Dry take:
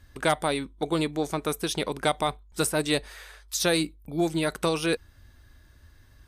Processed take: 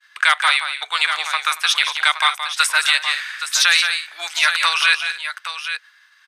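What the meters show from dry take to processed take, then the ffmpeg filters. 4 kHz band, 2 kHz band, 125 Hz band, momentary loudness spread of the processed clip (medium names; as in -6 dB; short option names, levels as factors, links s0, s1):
+15.0 dB, +17.5 dB, under -40 dB, 11 LU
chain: -filter_complex "[0:a]lowpass=2400,aemphasis=mode=production:type=riaa,agate=range=0.0224:threshold=0.00126:ratio=3:detection=peak,highpass=f=1300:w=0.5412,highpass=f=1300:w=1.3066,asplit=2[s0][s1];[s1]aecho=0:1:173|230|820:0.355|0.133|0.299[s2];[s0][s2]amix=inputs=2:normalize=0,alimiter=level_in=8.41:limit=0.891:release=50:level=0:latency=1,volume=0.891"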